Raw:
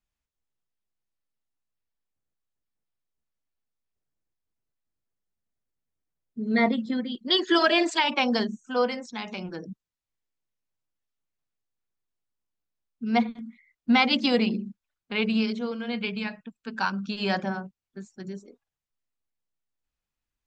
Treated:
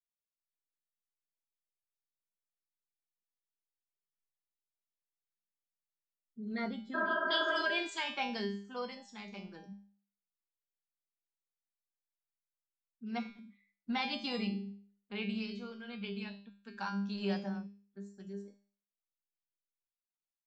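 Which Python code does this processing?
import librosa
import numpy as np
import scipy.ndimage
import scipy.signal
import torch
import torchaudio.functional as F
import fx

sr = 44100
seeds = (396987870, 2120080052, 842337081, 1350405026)

y = fx.noise_reduce_blind(x, sr, reduce_db=15)
y = fx.comb_fb(y, sr, f0_hz=200.0, decay_s=0.47, harmonics='all', damping=0.0, mix_pct=90)
y = fx.spec_repair(y, sr, seeds[0], start_s=6.97, length_s=0.63, low_hz=280.0, high_hz=1700.0, source='after')
y = y * librosa.db_to_amplitude(1.0)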